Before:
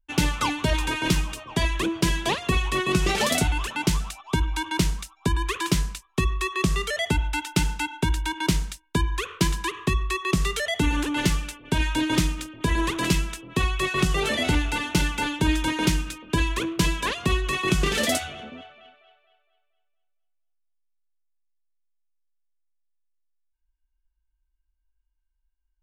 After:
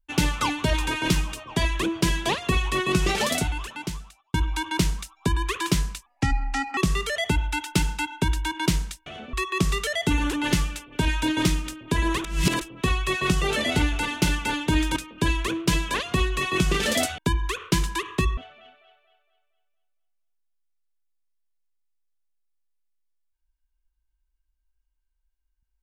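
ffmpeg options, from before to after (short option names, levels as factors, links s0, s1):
-filter_complex "[0:a]asplit=11[s0][s1][s2][s3][s4][s5][s6][s7][s8][s9][s10];[s0]atrim=end=4.34,asetpts=PTS-STARTPTS,afade=t=out:st=3.06:d=1.28[s11];[s1]atrim=start=4.34:end=6.064,asetpts=PTS-STARTPTS,afade=t=in:d=0.004:c=hsin[s12];[s2]atrim=start=6.06:end=6.58,asetpts=PTS-STARTPTS,asetrate=32193,aresample=44100[s13];[s3]atrim=start=6.576:end=8.872[s14];[s4]atrim=start=18.298:end=18.572[s15];[s5]atrim=start=10.058:end=12.972[s16];[s6]atrim=start=12.968:end=13.342,asetpts=PTS-STARTPTS,areverse[s17];[s7]atrim=start=13.338:end=15.692[s18];[s8]atrim=start=16.078:end=18.302[s19];[s9]atrim=start=8.868:end=10.062[s20];[s10]atrim=start=18.568[s21];[s11][s12]concat=n=2:v=0:a=1[s22];[s22][s13]acrossfade=d=0.004:c1=hsin:c2=hsin[s23];[s23][s14]acrossfade=d=0.004:c1=hsin:c2=hsin[s24];[s24][s15]acrossfade=d=0.004:c1=hsin:c2=hsin[s25];[s25][s16]acrossfade=d=0.004:c1=hsin:c2=hsin[s26];[s26][s17]acrossfade=d=0.004:c1=hsin:c2=hsin[s27];[s27][s18]acrossfade=d=0.004:c1=hsin:c2=hsin[s28];[s28][s19]acrossfade=d=0.004:c1=hsin:c2=hsin[s29];[s29][s20]acrossfade=d=0.004:c1=hsin:c2=hsin[s30];[s30][s21]acrossfade=d=0.004:c1=hsin:c2=hsin"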